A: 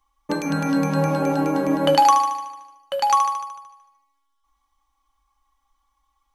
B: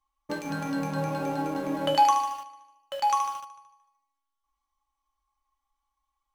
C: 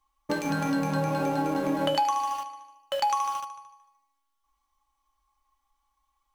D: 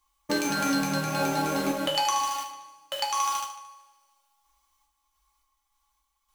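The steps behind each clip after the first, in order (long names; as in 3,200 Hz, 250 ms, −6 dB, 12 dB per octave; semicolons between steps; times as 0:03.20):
tuned comb filter 120 Hz, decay 0.4 s, harmonics odd, mix 80%; in parallel at −7 dB: centre clipping without the shift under −36.5 dBFS
downward compressor 6 to 1, threshold −29 dBFS, peak gain reduction 12.5 dB; level +6 dB
high-shelf EQ 2,100 Hz +10.5 dB; sample-and-hold tremolo; coupled-rooms reverb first 0.38 s, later 1.9 s, from −22 dB, DRR 1 dB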